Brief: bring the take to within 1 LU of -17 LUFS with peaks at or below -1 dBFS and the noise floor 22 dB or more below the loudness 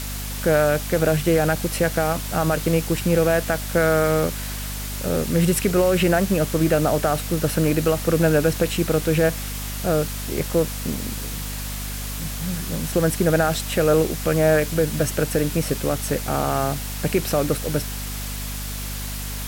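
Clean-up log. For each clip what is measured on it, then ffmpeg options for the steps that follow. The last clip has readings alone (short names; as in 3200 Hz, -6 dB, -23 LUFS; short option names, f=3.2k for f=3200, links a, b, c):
hum 50 Hz; harmonics up to 250 Hz; hum level -29 dBFS; noise floor -30 dBFS; noise floor target -44 dBFS; loudness -22.0 LUFS; peak -7.0 dBFS; loudness target -17.0 LUFS
-> -af "bandreject=f=50:t=h:w=6,bandreject=f=100:t=h:w=6,bandreject=f=150:t=h:w=6,bandreject=f=200:t=h:w=6,bandreject=f=250:t=h:w=6"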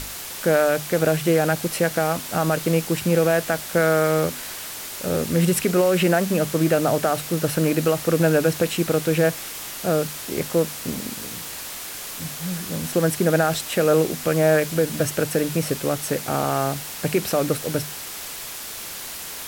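hum none; noise floor -34 dBFS; noise floor target -45 dBFS
-> -af "afftdn=nr=11:nf=-34"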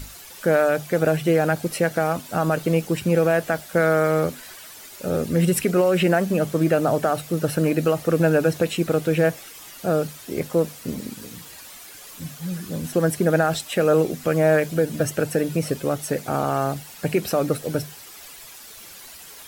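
noise floor -42 dBFS; noise floor target -44 dBFS
-> -af "afftdn=nr=6:nf=-42"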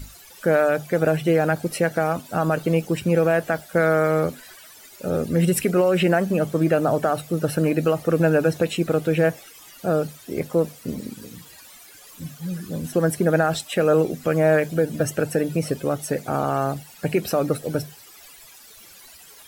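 noise floor -47 dBFS; loudness -22.0 LUFS; peak -8.0 dBFS; loudness target -17.0 LUFS
-> -af "volume=5dB"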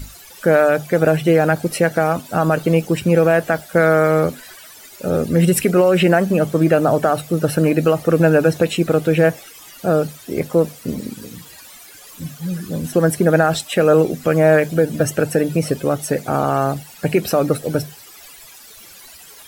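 loudness -17.0 LUFS; peak -3.0 dBFS; noise floor -42 dBFS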